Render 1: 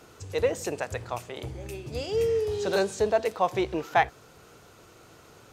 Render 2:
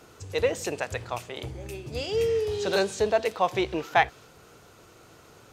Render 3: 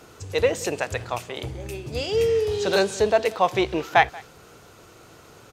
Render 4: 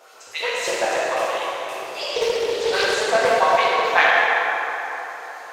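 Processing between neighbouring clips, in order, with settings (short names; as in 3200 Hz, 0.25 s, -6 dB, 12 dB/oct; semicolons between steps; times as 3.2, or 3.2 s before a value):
dynamic EQ 3100 Hz, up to +5 dB, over -46 dBFS, Q 0.83
echo 0.182 s -23 dB; gain +4 dB
LFO high-pass saw up 7.4 Hz 460–5300 Hz; plate-style reverb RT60 4.1 s, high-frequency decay 0.5×, DRR -9 dB; Doppler distortion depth 0.18 ms; gain -4.5 dB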